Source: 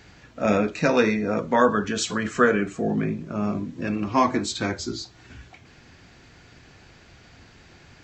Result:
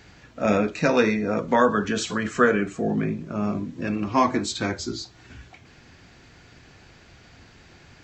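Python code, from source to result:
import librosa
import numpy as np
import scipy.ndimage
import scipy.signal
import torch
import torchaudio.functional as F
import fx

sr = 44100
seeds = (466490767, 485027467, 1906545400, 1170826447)

y = fx.band_squash(x, sr, depth_pct=40, at=(1.48, 2.07))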